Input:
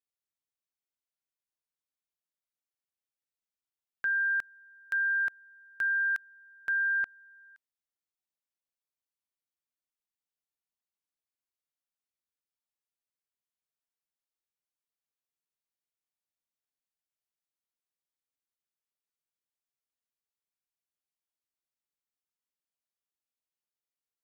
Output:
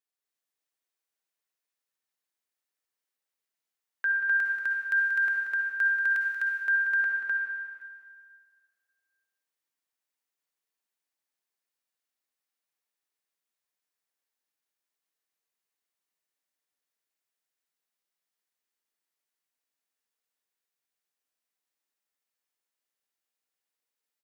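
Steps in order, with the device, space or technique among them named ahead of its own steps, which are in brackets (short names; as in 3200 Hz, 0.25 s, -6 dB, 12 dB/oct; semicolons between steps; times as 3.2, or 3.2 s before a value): stadium PA (HPF 240 Hz 12 dB/oct; bell 1800 Hz +3.5 dB 0.47 oct; loudspeakers at several distances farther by 63 m -10 dB, 87 m -1 dB; reverb RT60 1.9 s, pre-delay 48 ms, DRR 1 dB)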